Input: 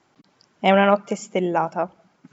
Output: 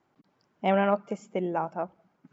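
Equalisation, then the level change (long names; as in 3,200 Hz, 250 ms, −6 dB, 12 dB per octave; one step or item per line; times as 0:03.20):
high-shelf EQ 2,800 Hz −12 dB
−7.0 dB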